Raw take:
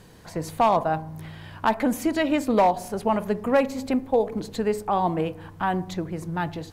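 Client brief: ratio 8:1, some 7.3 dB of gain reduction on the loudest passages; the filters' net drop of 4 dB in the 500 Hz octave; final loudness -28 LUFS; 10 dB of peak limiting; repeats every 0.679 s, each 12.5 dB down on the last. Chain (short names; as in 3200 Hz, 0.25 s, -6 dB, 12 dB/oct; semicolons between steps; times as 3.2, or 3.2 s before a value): bell 500 Hz -5 dB; compressor 8:1, threshold -25 dBFS; limiter -23 dBFS; feedback echo 0.679 s, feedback 24%, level -12.5 dB; gain +5.5 dB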